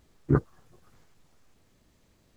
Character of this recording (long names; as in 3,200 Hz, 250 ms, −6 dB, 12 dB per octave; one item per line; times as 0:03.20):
background noise floor −66 dBFS
spectral slope −8.0 dB per octave